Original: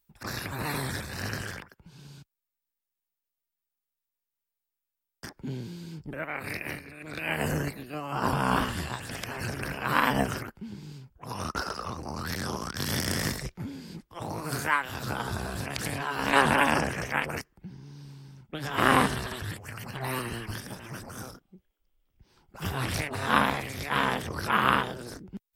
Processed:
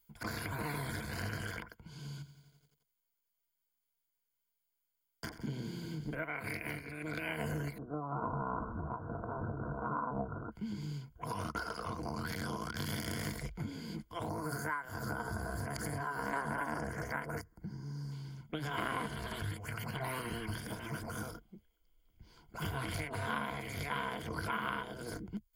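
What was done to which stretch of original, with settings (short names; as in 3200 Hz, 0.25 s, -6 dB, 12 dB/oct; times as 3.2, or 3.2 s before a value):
2.11–6.15 lo-fi delay 86 ms, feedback 80%, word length 11-bit, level -13 dB
7.78–10.52 steep low-pass 1400 Hz 96 dB/oct
14.29–18.12 band shelf 3000 Hz -14 dB 1 oct
whole clip: ripple EQ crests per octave 1.8, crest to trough 10 dB; compressor 4:1, threshold -36 dBFS; dynamic EQ 5900 Hz, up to -5 dB, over -56 dBFS, Q 0.88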